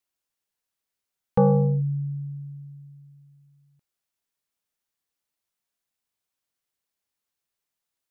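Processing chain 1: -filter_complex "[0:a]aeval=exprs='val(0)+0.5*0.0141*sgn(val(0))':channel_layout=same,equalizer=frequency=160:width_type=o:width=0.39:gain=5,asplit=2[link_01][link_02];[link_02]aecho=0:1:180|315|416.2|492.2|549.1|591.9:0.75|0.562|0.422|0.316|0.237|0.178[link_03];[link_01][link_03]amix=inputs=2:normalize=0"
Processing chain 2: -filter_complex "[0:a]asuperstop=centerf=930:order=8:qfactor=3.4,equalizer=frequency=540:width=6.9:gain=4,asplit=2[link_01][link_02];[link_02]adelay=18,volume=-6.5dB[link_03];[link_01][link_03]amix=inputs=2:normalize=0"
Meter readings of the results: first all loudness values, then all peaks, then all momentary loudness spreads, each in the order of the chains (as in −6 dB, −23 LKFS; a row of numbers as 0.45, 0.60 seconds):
−21.0, −27.0 LKFS; −7.0, −8.0 dBFS; 20, 19 LU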